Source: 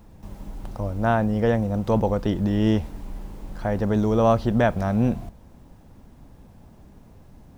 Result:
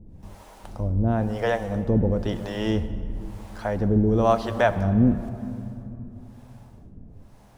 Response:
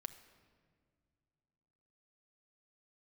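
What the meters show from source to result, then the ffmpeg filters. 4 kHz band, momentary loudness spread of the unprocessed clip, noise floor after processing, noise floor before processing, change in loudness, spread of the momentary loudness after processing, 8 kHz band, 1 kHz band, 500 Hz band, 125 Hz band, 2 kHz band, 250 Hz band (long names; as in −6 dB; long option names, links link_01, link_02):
+1.0 dB, 20 LU, −48 dBFS, −50 dBFS, −1.5 dB, 17 LU, can't be measured, −1.5 dB, −1.5 dB, 0.0 dB, 0.0 dB, −1.0 dB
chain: -filter_complex "[0:a]acrossover=split=460[link_01][link_02];[link_01]aeval=exprs='val(0)*(1-1/2+1/2*cos(2*PI*1*n/s))':channel_layout=same[link_03];[link_02]aeval=exprs='val(0)*(1-1/2-1/2*cos(2*PI*1*n/s))':channel_layout=same[link_04];[link_03][link_04]amix=inputs=2:normalize=0,asplit=2[link_05][link_06];[1:a]atrim=start_sample=2205,asetrate=22932,aresample=44100[link_07];[link_06][link_07]afir=irnorm=-1:irlink=0,volume=11.5dB[link_08];[link_05][link_08]amix=inputs=2:normalize=0,volume=-9dB"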